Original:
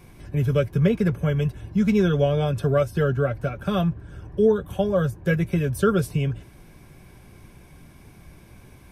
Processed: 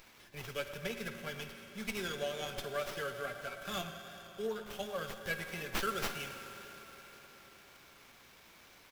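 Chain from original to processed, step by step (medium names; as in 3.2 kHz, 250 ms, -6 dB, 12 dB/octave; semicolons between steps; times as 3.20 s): on a send at -6 dB: reverberation RT60 4.8 s, pre-delay 4 ms; on the sum: wow and flutter 27 cents; differentiator; speakerphone echo 110 ms, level -14 dB; sliding maximum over 5 samples; trim +4.5 dB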